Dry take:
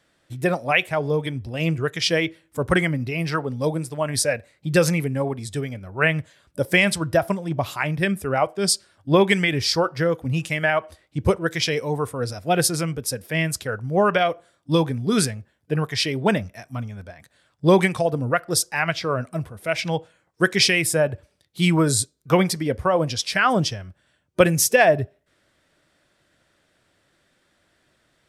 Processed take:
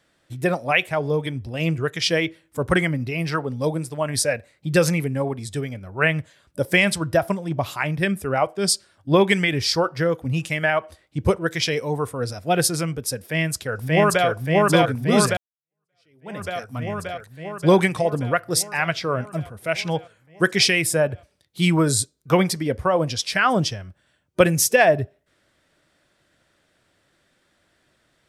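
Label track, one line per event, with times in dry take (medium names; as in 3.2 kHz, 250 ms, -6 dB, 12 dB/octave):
13.170000	14.270000	echo throw 580 ms, feedback 70%, level 0 dB
15.370000	16.490000	fade in exponential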